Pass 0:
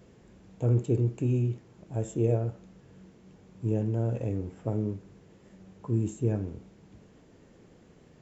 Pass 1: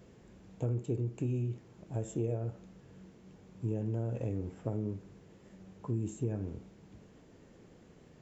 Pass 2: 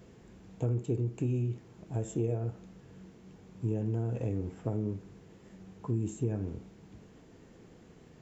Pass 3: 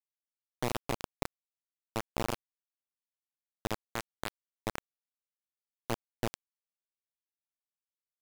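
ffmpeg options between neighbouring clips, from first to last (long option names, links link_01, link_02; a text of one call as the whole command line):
ffmpeg -i in.wav -af "acompressor=threshold=-29dB:ratio=4,volume=-1.5dB" out.wav
ffmpeg -i in.wav -af "bandreject=frequency=570:width=12,volume=2.5dB" out.wav
ffmpeg -i in.wav -af "acrusher=bits=3:mix=0:aa=0.000001,volume=-2.5dB" out.wav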